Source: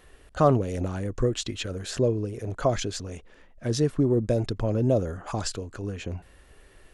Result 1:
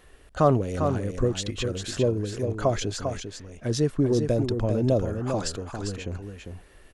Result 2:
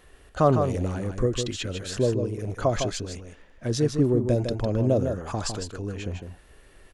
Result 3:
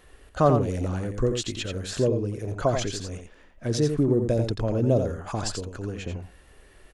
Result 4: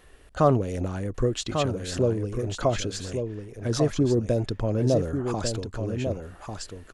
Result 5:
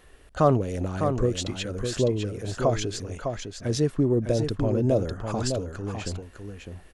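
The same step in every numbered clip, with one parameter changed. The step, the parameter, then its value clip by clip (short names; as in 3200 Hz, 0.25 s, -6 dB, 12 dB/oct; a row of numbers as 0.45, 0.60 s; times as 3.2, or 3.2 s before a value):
echo, time: 399, 155, 87, 1145, 605 ms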